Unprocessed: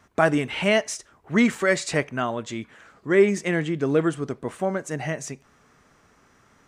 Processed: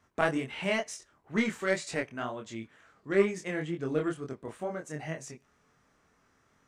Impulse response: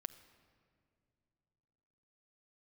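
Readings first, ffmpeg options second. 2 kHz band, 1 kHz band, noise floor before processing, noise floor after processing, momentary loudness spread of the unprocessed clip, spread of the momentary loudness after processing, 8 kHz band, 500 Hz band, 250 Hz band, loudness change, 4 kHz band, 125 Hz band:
−8.0 dB, −8.5 dB, −60 dBFS, −69 dBFS, 15 LU, 15 LU, −10.0 dB, −8.5 dB, −9.5 dB, −9.0 dB, −9.0 dB, −9.5 dB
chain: -af "aeval=exprs='0.668*(cos(1*acos(clip(val(0)/0.668,-1,1)))-cos(1*PI/2))+0.133*(cos(3*acos(clip(val(0)/0.668,-1,1)))-cos(3*PI/2))':channel_layout=same,acontrast=36,flanger=delay=22.5:depth=4.5:speed=2.1,volume=-4.5dB"

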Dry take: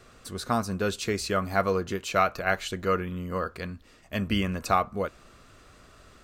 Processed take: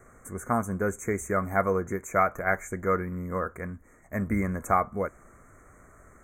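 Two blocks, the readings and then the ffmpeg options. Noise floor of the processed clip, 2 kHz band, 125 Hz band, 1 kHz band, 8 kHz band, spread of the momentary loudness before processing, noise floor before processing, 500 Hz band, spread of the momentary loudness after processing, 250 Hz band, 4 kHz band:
−56 dBFS, −0.5 dB, 0.0 dB, 0.0 dB, −1.5 dB, 10 LU, −55 dBFS, 0.0 dB, 11 LU, 0.0 dB, below −40 dB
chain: -af "asuperstop=centerf=3800:order=20:qfactor=0.94"

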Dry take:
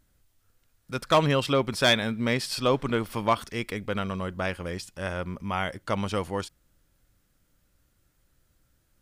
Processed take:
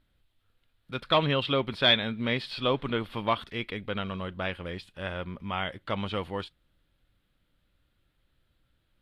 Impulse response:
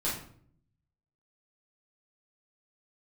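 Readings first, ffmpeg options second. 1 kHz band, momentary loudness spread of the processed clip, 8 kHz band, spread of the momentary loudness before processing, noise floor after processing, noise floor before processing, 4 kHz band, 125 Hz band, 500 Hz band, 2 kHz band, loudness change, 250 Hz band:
−3.0 dB, 14 LU, below −20 dB, 12 LU, −74 dBFS, −70 dBFS, +2.0 dB, −3.5 dB, −3.5 dB, −2.0 dB, −2.0 dB, −3.5 dB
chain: -filter_complex "[0:a]highshelf=frequency=4700:width_type=q:width=3:gain=-9.5,acrossover=split=6100[link_01][link_02];[link_02]acompressor=threshold=-57dB:ratio=4:attack=1:release=60[link_03];[link_01][link_03]amix=inputs=2:normalize=0,volume=-3.5dB" -ar 32000 -c:a libvorbis -b:a 64k

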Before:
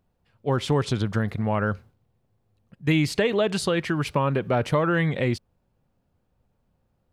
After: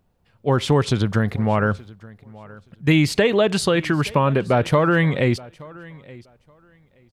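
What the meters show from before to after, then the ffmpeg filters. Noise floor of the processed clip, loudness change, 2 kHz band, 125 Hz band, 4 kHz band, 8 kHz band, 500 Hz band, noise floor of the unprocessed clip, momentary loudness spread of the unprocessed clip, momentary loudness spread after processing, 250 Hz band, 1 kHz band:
−62 dBFS, +5.0 dB, +5.0 dB, +5.0 dB, +5.0 dB, +5.0 dB, +5.0 dB, −72 dBFS, 6 LU, 11 LU, +5.0 dB, +5.0 dB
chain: -af "aecho=1:1:874|1748:0.0794|0.0143,volume=5dB"

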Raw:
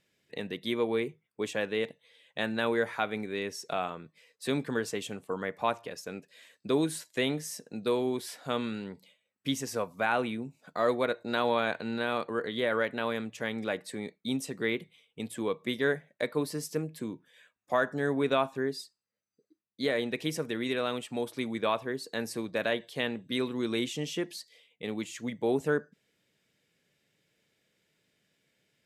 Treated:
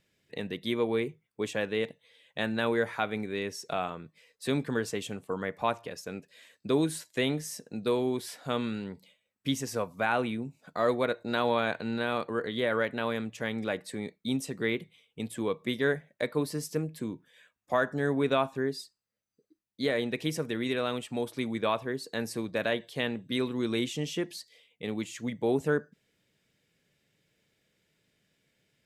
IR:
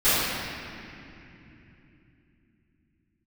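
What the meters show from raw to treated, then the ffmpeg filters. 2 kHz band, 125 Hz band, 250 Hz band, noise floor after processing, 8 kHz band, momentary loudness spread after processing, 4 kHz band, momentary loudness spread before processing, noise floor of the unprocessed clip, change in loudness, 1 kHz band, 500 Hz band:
0.0 dB, +3.5 dB, +1.5 dB, −80 dBFS, 0.0 dB, 10 LU, 0.0 dB, 11 LU, −81 dBFS, +0.5 dB, 0.0 dB, +0.5 dB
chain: -af "lowshelf=frequency=100:gain=10"

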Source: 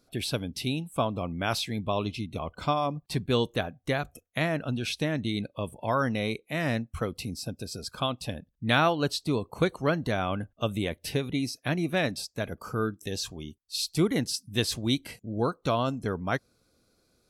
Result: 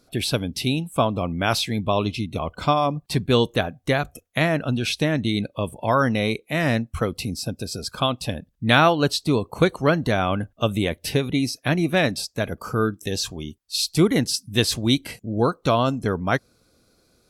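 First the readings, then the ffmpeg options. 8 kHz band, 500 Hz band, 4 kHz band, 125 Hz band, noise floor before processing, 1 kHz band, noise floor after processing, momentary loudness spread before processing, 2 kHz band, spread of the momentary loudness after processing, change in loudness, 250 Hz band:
+7.0 dB, +7.0 dB, +7.0 dB, +7.0 dB, −71 dBFS, +7.0 dB, −64 dBFS, 9 LU, +7.0 dB, 9 LU, +7.0 dB, +7.0 dB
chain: -af "volume=7dB" -ar 48000 -c:a libopus -b:a 128k

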